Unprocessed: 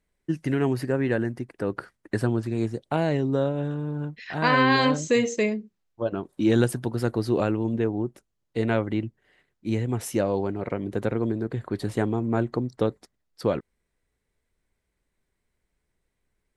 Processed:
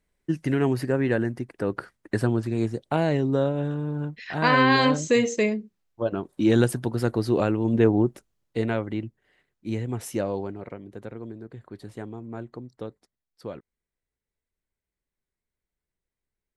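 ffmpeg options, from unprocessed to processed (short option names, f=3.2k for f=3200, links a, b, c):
-af "volume=7.5dB,afade=t=in:st=7.61:d=0.3:silence=0.473151,afade=t=out:st=7.91:d=0.83:silence=0.298538,afade=t=out:st=10.28:d=0.56:silence=0.354813"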